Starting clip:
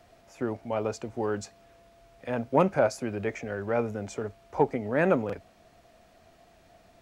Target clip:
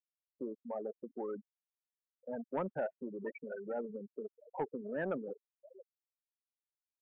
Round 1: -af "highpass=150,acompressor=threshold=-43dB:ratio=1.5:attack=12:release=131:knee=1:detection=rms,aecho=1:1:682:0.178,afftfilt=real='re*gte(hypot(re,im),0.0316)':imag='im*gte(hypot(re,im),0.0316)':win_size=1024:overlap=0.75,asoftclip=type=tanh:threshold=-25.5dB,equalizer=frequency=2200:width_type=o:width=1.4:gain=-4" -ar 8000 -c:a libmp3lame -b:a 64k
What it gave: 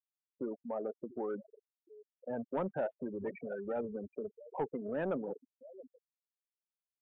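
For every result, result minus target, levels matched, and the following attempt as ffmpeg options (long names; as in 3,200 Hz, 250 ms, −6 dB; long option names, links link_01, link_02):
2,000 Hz band −3.5 dB; downward compressor: peak gain reduction −3 dB
-af "highpass=150,acompressor=threshold=-43dB:ratio=1.5:attack=12:release=131:knee=1:detection=rms,aecho=1:1:682:0.178,afftfilt=real='re*gte(hypot(re,im),0.0316)':imag='im*gte(hypot(re,im),0.0316)':win_size=1024:overlap=0.75,asoftclip=type=tanh:threshold=-25.5dB,equalizer=frequency=2200:width_type=o:width=1.4:gain=3.5" -ar 8000 -c:a libmp3lame -b:a 64k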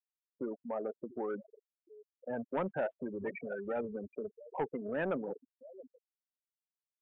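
downward compressor: peak gain reduction −3 dB
-af "highpass=150,acompressor=threshold=-52dB:ratio=1.5:attack=12:release=131:knee=1:detection=rms,aecho=1:1:682:0.178,afftfilt=real='re*gte(hypot(re,im),0.0316)':imag='im*gte(hypot(re,im),0.0316)':win_size=1024:overlap=0.75,asoftclip=type=tanh:threshold=-25.5dB,equalizer=frequency=2200:width_type=o:width=1.4:gain=3.5" -ar 8000 -c:a libmp3lame -b:a 64k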